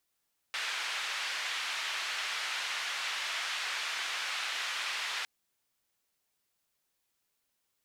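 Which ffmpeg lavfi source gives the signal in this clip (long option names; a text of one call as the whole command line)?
ffmpeg -f lavfi -i "anoisesrc=color=white:duration=4.71:sample_rate=44100:seed=1,highpass=frequency=1300,lowpass=frequency=3100,volume=-20.3dB" out.wav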